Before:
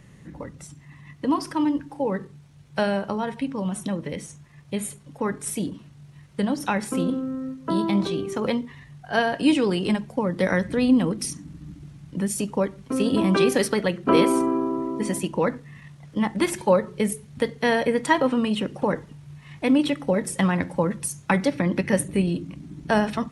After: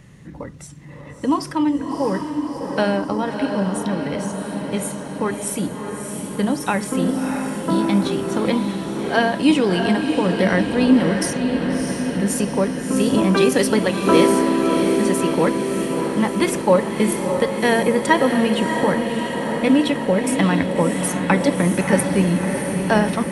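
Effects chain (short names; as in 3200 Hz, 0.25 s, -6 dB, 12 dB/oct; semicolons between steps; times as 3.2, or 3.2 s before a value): diffused feedback echo 0.653 s, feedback 68%, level -5.5 dB; gain +3.5 dB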